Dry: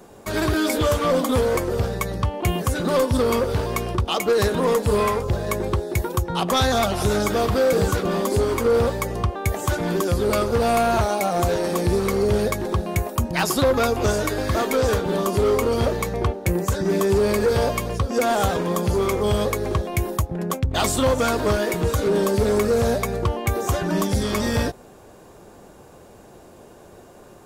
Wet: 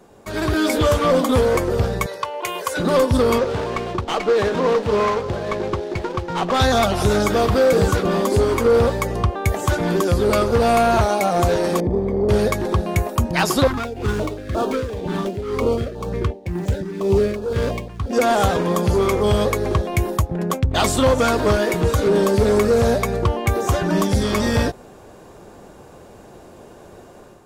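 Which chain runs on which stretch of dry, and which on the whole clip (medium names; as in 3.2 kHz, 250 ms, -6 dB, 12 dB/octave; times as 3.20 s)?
2.06–2.77 s: high-pass 610 Hz + comb 2 ms, depth 60%
3.38–6.60 s: CVSD coder 32 kbps + high-pass 210 Hz 6 dB/octave + sliding maximum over 5 samples
11.80–12.29 s: boxcar filter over 32 samples + transformer saturation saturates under 200 Hz
13.67–18.13 s: median filter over 9 samples + tremolo 2 Hz, depth 71% + step-sequenced notch 5.7 Hz 520–2000 Hz
whole clip: treble shelf 9 kHz -7 dB; level rider gain up to 6.5 dB; trim -3 dB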